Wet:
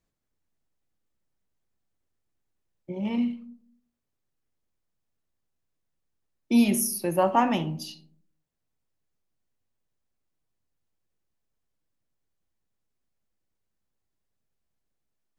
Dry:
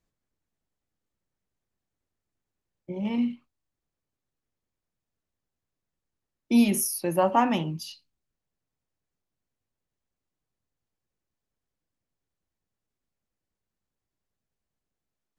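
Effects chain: algorithmic reverb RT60 0.64 s, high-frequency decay 0.3×, pre-delay 5 ms, DRR 14.5 dB

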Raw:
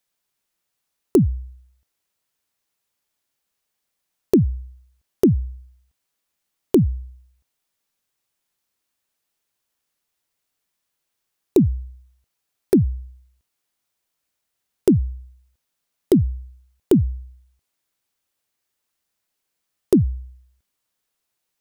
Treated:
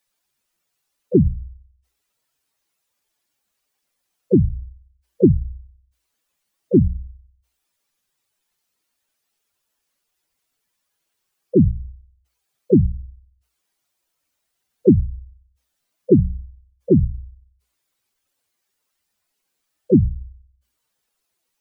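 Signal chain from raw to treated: spectral contrast enhancement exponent 2.5; harmony voices -12 st -6 dB, +5 st -12 dB; hum notches 60/120/180 Hz; trim +2 dB

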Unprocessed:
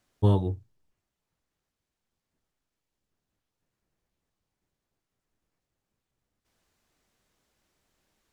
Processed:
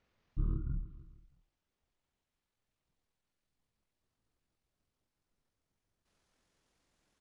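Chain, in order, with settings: gliding tape speed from 58% -> 173%; feedback delay 156 ms, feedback 46%, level -19 dB; compression 2:1, threshold -33 dBFS, peak gain reduction 10 dB; pitch shift -10.5 st; low-pass that closes with the level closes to 2 kHz, closed at -30 dBFS; trim -2 dB

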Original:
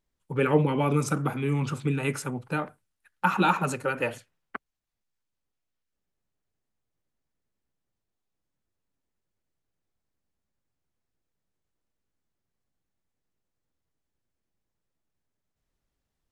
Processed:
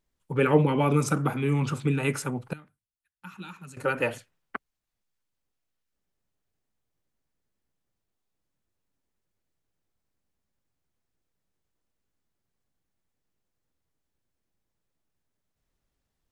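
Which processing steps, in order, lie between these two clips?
2.53–3.77 s: amplifier tone stack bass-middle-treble 6-0-2; trim +1.5 dB

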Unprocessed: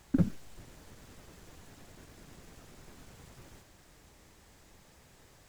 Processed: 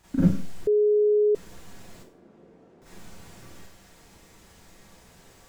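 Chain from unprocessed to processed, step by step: 1.98–2.82 s: band-pass filter 390 Hz, Q 1.2; Schroeder reverb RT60 0.39 s, combs from 33 ms, DRR -9.5 dB; 0.67–1.35 s: bleep 419 Hz -13.5 dBFS; trim -3.5 dB

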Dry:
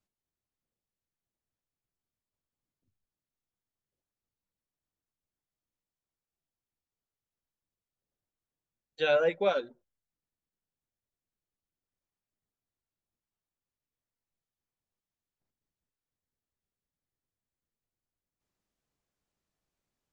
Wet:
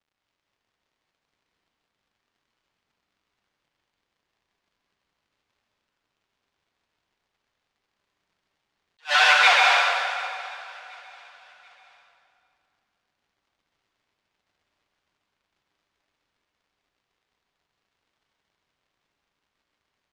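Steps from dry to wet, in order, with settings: random holes in the spectrogram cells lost 34%; fuzz box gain 46 dB, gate -50 dBFS; steep high-pass 810 Hz 36 dB/octave; peaking EQ 1.3 kHz -5 dB 0.36 oct; crackle 130 per s -58 dBFS; low-pass 4.2 kHz 12 dB/octave; feedback delay 734 ms, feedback 40%, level -22 dB; plate-style reverb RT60 2.4 s, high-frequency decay 0.75×, pre-delay 115 ms, DRR -3.5 dB; attacks held to a fixed rise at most 390 dB/s

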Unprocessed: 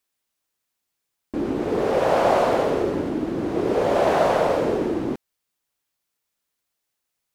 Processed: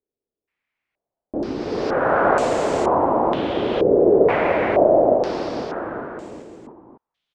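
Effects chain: bouncing-ball echo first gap 490 ms, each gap 0.85×, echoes 5; step-sequenced low-pass 2.1 Hz 430–7600 Hz; trim -2 dB

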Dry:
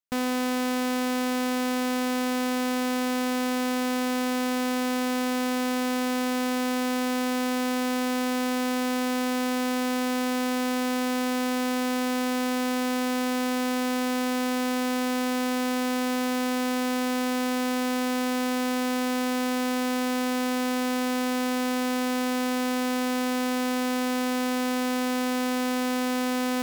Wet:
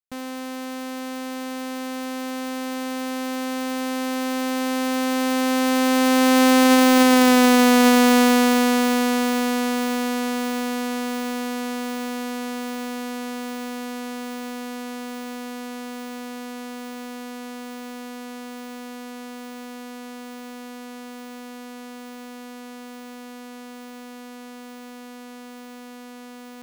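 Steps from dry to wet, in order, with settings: Doppler pass-by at 7.29 s, 9 m/s, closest 2.9 m; loudness maximiser +28 dB; trim -7 dB

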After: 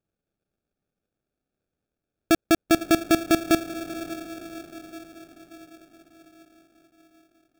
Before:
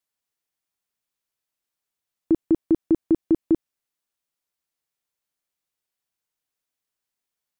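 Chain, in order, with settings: echo that smears into a reverb 527 ms, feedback 57%, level -12 dB; sample-rate reducer 1 kHz, jitter 0%

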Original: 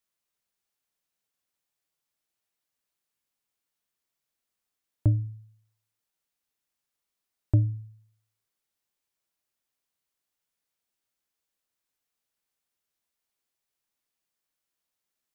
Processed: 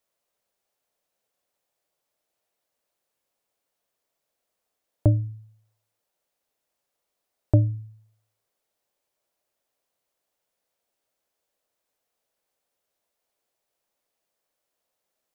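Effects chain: peaking EQ 580 Hz +12 dB 1.2 oct; trim +2.5 dB

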